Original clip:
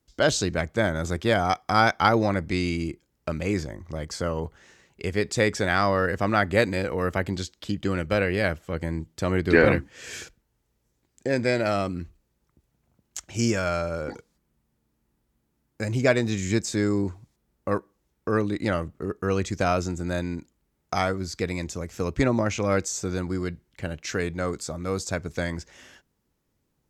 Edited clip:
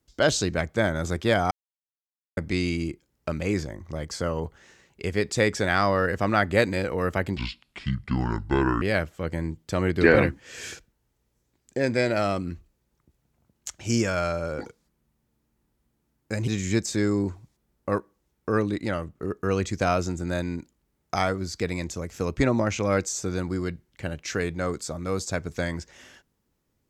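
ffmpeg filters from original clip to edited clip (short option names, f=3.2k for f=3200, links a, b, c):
-filter_complex "[0:a]asplit=8[a][b][c][d][e][f][g][h];[a]atrim=end=1.51,asetpts=PTS-STARTPTS,afade=t=out:st=1.506:d=0.004:c=hsin[i];[b]atrim=start=1.51:end=2.37,asetpts=PTS-STARTPTS,volume=0[j];[c]atrim=start=2.37:end=7.374,asetpts=PTS-STARTPTS,afade=t=in:d=0.004:c=hsin[k];[d]atrim=start=7.37:end=8.31,asetpts=PTS-STARTPTS,asetrate=28665,aresample=44100,atrim=end_sample=63775,asetpts=PTS-STARTPTS[l];[e]atrim=start=8.306:end=15.972[m];[f]atrim=start=16.268:end=18.602[n];[g]atrim=start=18.598:end=18.992,asetpts=PTS-STARTPTS,volume=-3dB[o];[h]atrim=start=18.988[p];[i][j][k]concat=n=3:v=0:a=1[q];[q][l]acrossfade=d=0.004:c1=hsin:c2=hsin[r];[r][m]acrossfade=d=0.004:c1=hsin:c2=hsin[s];[s][n]acrossfade=d=0.004:c1=hsin:c2=hsin[t];[t][o]acrossfade=d=0.004:c1=hsin:c2=hsin[u];[u][p]acrossfade=d=0.004:c1=hsin:c2=hsin"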